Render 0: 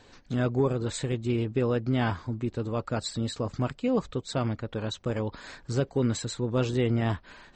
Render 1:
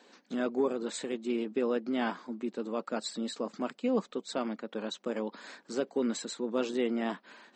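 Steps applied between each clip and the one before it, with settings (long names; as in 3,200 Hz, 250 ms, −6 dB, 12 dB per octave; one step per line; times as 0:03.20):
elliptic high-pass filter 200 Hz, stop band 50 dB
level −2.5 dB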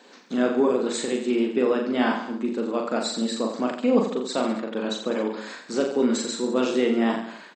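reverse bouncing-ball delay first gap 40 ms, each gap 1.15×, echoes 5
level +7 dB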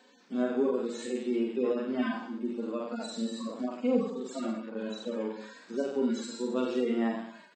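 harmonic-percussive split with one part muted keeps harmonic
level −6.5 dB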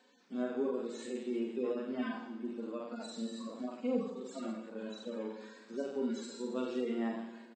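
repeating echo 165 ms, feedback 59%, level −17 dB
level −6.5 dB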